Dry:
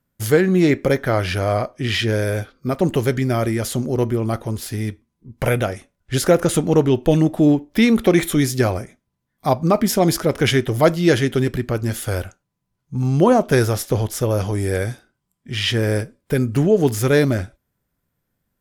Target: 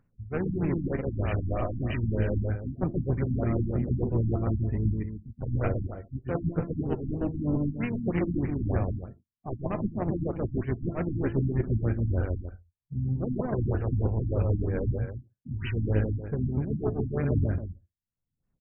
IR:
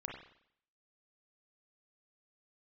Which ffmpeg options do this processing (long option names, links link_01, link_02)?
-filter_complex "[0:a]asplit=2[link_01][link_02];[1:a]atrim=start_sample=2205,asetrate=57330,aresample=44100[link_03];[link_02][link_03]afir=irnorm=-1:irlink=0,volume=-11.5dB[link_04];[link_01][link_04]amix=inputs=2:normalize=0,aeval=exprs='0.841*(cos(1*acos(clip(val(0)/0.841,-1,1)))-cos(1*PI/2))+0.00596*(cos(2*acos(clip(val(0)/0.841,-1,1)))-cos(2*PI/2))+0.211*(cos(3*acos(clip(val(0)/0.841,-1,1)))-cos(3*PI/2))+0.00668*(cos(6*acos(clip(val(0)/0.841,-1,1)))-cos(6*PI/2))':channel_layout=same,highshelf=frequency=7200:gain=4.5,bandreject=frequency=340.2:width_type=h:width=4,bandreject=frequency=680.4:width_type=h:width=4,bandreject=frequency=1020.6:width_type=h:width=4,bandreject=frequency=1360.8:width_type=h:width=4,bandreject=frequency=1701:width_type=h:width=4,bandreject=frequency=2041.2:width_type=h:width=4,bandreject=frequency=2381.4:width_type=h:width=4,bandreject=frequency=2721.6:width_type=h:width=4,bandreject=frequency=3061.8:width_type=h:width=4,bandreject=frequency=3402:width_type=h:width=4,bandreject=frequency=3742.2:width_type=h:width=4,bandreject=frequency=4082.4:width_type=h:width=4,bandreject=frequency=4422.6:width_type=h:width=4,bandreject=frequency=4762.8:width_type=h:width=4,bandreject=frequency=5103:width_type=h:width=4,bandreject=frequency=5443.2:width_type=h:width=4,bandreject=frequency=5783.4:width_type=h:width=4,bandreject=frequency=6123.6:width_type=h:width=4,areverse,acompressor=threshold=-32dB:ratio=16,areverse,asplit=4[link_05][link_06][link_07][link_08];[link_06]asetrate=22050,aresample=44100,atempo=2,volume=-11dB[link_09];[link_07]asetrate=29433,aresample=44100,atempo=1.49831,volume=-14dB[link_10];[link_08]asetrate=37084,aresample=44100,atempo=1.18921,volume=-11dB[link_11];[link_05][link_09][link_10][link_11]amix=inputs=4:normalize=0,afftdn=noise_reduction=35:noise_floor=-46,aecho=1:1:131.2|274.1:0.794|0.316,acompressor=mode=upward:threshold=-43dB:ratio=2.5,lowshelf=frequency=200:gain=9,afftfilt=real='re*lt(b*sr/1024,290*pow(3100/290,0.5+0.5*sin(2*PI*3.2*pts/sr)))':imag='im*lt(b*sr/1024,290*pow(3100/290,0.5+0.5*sin(2*PI*3.2*pts/sr)))':win_size=1024:overlap=0.75,volume=2.5dB"